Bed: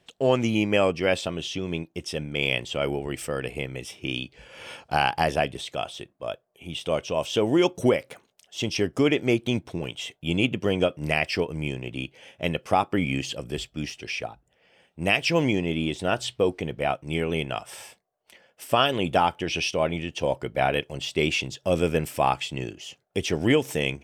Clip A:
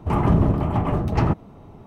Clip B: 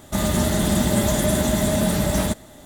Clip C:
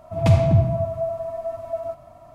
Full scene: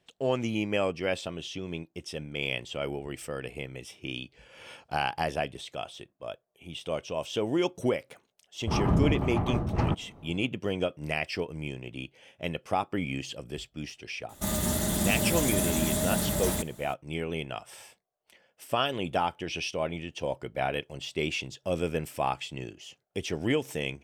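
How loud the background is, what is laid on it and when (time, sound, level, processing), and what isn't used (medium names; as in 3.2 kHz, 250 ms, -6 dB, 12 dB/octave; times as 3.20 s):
bed -6.5 dB
8.61 s: add A -7 dB
14.29 s: add B -9 dB + treble shelf 6.7 kHz +9.5 dB
not used: C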